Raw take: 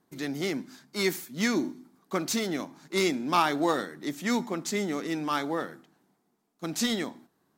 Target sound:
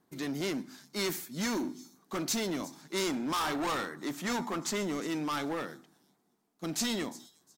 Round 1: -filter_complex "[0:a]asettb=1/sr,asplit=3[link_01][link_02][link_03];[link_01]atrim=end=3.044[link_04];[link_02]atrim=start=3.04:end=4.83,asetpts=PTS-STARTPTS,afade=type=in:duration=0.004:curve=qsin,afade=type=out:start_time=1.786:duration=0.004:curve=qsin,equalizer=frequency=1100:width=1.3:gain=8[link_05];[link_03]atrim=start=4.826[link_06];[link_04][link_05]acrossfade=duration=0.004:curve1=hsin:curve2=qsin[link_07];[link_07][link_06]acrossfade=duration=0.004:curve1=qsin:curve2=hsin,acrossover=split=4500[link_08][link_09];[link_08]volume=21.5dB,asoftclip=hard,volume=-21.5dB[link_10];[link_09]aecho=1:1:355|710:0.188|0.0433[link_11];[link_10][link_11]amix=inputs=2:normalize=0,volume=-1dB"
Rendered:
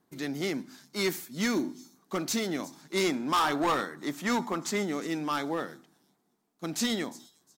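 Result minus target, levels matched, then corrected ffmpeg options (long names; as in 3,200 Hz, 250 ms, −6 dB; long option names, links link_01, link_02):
gain into a clipping stage and back: distortion −4 dB
-filter_complex "[0:a]asettb=1/sr,asplit=3[link_01][link_02][link_03];[link_01]atrim=end=3.044[link_04];[link_02]atrim=start=3.04:end=4.83,asetpts=PTS-STARTPTS,afade=type=in:duration=0.004:curve=qsin,afade=type=out:start_time=1.786:duration=0.004:curve=qsin,equalizer=frequency=1100:width=1.3:gain=8[link_05];[link_03]atrim=start=4.826[link_06];[link_04][link_05]acrossfade=duration=0.004:curve1=hsin:curve2=qsin[link_07];[link_07][link_06]acrossfade=duration=0.004:curve1=qsin:curve2=hsin,acrossover=split=4500[link_08][link_09];[link_08]volume=29dB,asoftclip=hard,volume=-29dB[link_10];[link_09]aecho=1:1:355|710:0.188|0.0433[link_11];[link_10][link_11]amix=inputs=2:normalize=0,volume=-1dB"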